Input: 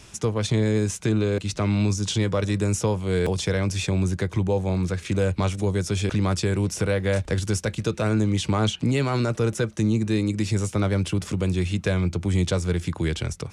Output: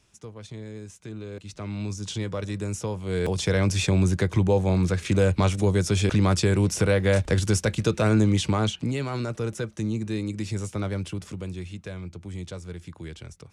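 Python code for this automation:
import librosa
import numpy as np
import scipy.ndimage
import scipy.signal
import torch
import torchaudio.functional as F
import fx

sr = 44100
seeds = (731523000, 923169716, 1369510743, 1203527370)

y = fx.gain(x, sr, db=fx.line((0.97, -17.0), (2.1, -7.0), (2.9, -7.0), (3.61, 2.0), (8.28, 2.0), (8.98, -6.0), (10.9, -6.0), (11.89, -13.5)))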